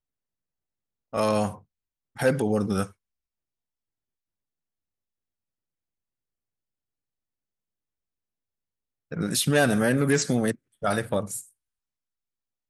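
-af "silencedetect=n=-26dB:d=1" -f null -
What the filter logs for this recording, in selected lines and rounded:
silence_start: 0.00
silence_end: 1.14 | silence_duration: 1.14
silence_start: 2.83
silence_end: 9.12 | silence_duration: 6.29
silence_start: 11.39
silence_end: 12.70 | silence_duration: 1.31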